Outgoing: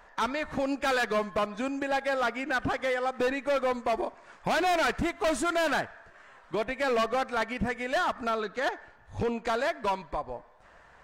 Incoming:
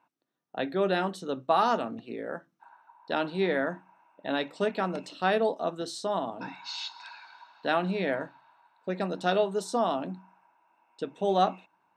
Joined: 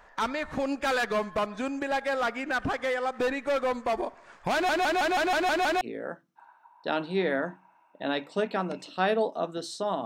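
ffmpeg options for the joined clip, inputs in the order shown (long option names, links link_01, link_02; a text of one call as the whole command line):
ffmpeg -i cue0.wav -i cue1.wav -filter_complex "[0:a]apad=whole_dur=10.05,atrim=end=10.05,asplit=8[link_01][link_02][link_03][link_04][link_05][link_06][link_07][link_08];[link_01]atrim=end=4.692[link_09];[link_02]atrim=start=4.528:end=4.692[link_10];[link_03]atrim=start=4.528:end=4.692[link_11];[link_04]atrim=start=4.528:end=4.692[link_12];[link_05]atrim=start=4.528:end=4.692[link_13];[link_06]atrim=start=4.528:end=4.692[link_14];[link_07]atrim=start=4.528:end=4.692[link_15];[link_08]atrim=start=4.528:end=4.692[link_16];[1:a]atrim=start=2.048:end=6.29[link_17];[link_09][link_10]acrossfade=duration=0.004:curve1=hsin:curve2=hsin[link_18];[link_18][link_11]acrossfade=duration=0.004:curve1=hsin:curve2=hsin[link_19];[link_19][link_12]acrossfade=duration=0.004:curve1=hsin:curve2=hsin[link_20];[link_20][link_13]acrossfade=duration=0.004:curve1=hsin:curve2=hsin[link_21];[link_21][link_14]acrossfade=duration=0.004:curve1=hsin:curve2=hsin[link_22];[link_22][link_15]acrossfade=duration=0.004:curve1=hsin:curve2=hsin[link_23];[link_23][link_16]acrossfade=duration=0.004:curve1=hsin:curve2=hsin[link_24];[link_24][link_17]acrossfade=duration=0.004:curve1=hsin:curve2=hsin" out.wav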